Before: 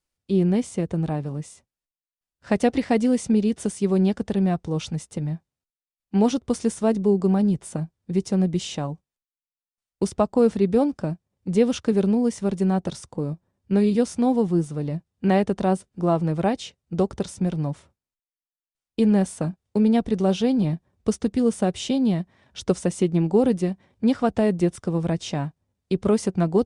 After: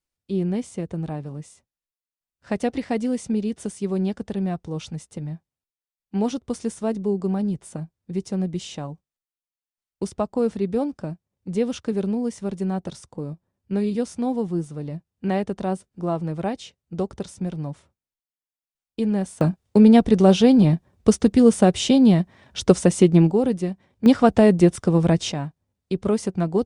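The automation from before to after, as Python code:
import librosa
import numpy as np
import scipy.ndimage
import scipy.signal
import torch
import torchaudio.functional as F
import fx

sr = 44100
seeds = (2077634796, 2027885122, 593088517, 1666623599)

y = fx.gain(x, sr, db=fx.steps((0.0, -4.0), (19.41, 6.5), (23.31, -1.5), (24.06, 6.0), (25.32, -1.5)))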